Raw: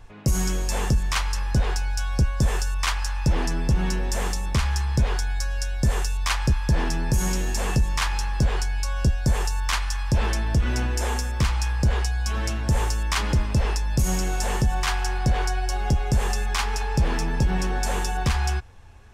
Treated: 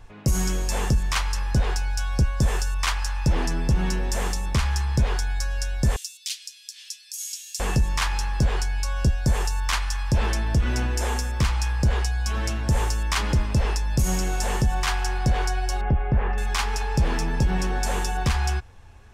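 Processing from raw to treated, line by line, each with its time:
5.96–7.6 inverse Chebyshev high-pass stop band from 570 Hz, stop band 80 dB
15.81–16.38 LPF 2300 Hz 24 dB/oct

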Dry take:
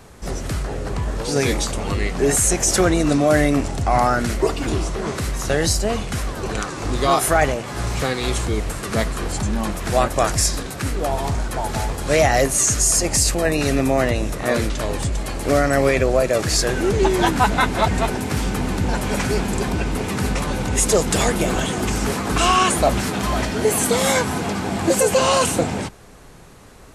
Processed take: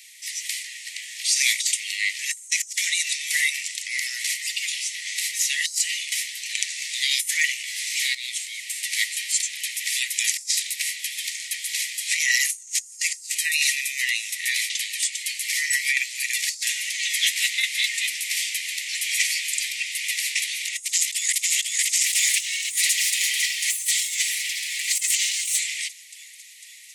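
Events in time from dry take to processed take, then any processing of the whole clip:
8.15–9.02 fade in, from -12.5 dB
20.83–21.36 echo throw 0.5 s, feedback 70%, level -0.5 dB
22.03–25.59 minimum comb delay 5.1 ms
whole clip: Chebyshev high-pass 1900 Hz, order 8; dynamic EQ 7300 Hz, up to +5 dB, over -32 dBFS, Q 1.1; negative-ratio compressor -26 dBFS, ratio -0.5; gain +3.5 dB

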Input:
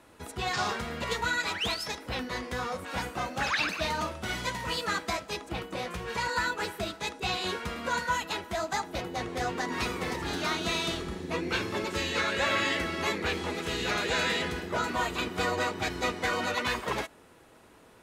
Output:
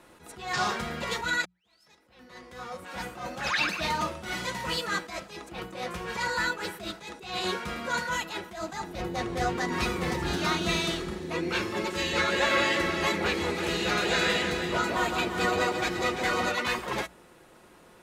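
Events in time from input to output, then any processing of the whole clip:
1.45–3.35 fade in quadratic
8.6–10.86 low shelf 150 Hz +9.5 dB
11.96–16.49 echo with dull and thin repeats by turns 0.171 s, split 950 Hz, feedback 53%, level -3 dB
whole clip: notches 60/120/180 Hz; comb 5.6 ms, depth 37%; attack slew limiter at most 100 dB/s; gain +1.5 dB

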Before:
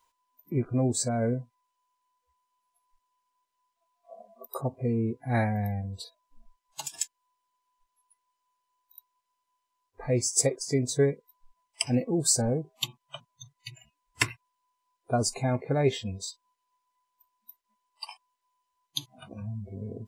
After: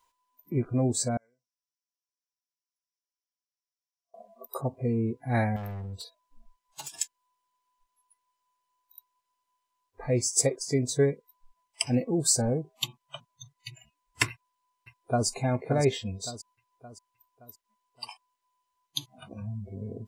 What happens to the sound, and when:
1.17–4.14 band-pass 5600 Hz, Q 8.5
5.56–6.92 hard clip -34 dBFS
14.29–15.27 echo throw 0.57 s, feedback 45%, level -8 dB

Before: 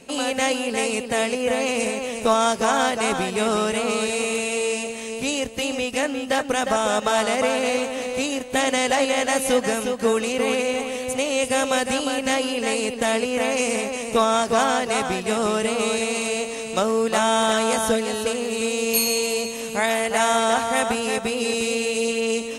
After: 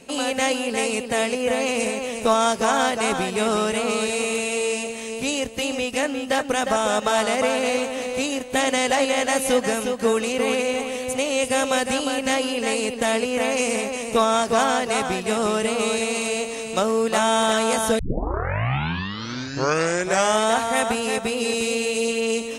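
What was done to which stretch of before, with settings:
17.99 tape start 2.53 s

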